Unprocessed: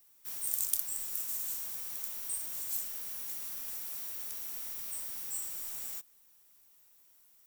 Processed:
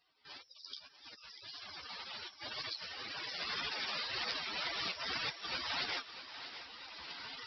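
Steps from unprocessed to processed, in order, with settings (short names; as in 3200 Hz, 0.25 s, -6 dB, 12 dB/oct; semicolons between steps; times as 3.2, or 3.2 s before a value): recorder AGC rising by 9.9 dB/s; spectral gate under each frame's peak -20 dB strong; HPF 44 Hz 24 dB/oct; low shelf 460 Hz -9.5 dB; in parallel at 0 dB: limiter -14 dBFS, peak gain reduction 10.5 dB; on the sum: flange 1.9 Hz, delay 6.7 ms, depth 7 ms, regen -21%; on a send: thinning echo 0.642 s, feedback 57%, high-pass 230 Hz, level -12 dB; on the sum: downsampling 11025 Hz; gain +4 dB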